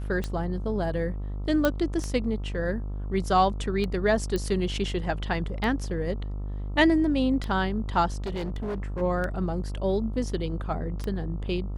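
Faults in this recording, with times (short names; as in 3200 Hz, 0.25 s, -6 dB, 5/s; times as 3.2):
buzz 50 Hz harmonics 27 -32 dBFS
tick 33 1/3 rpm -18 dBFS
1.65 pop -10 dBFS
4.36 pop -16 dBFS
8.24–9.02 clipped -27.5 dBFS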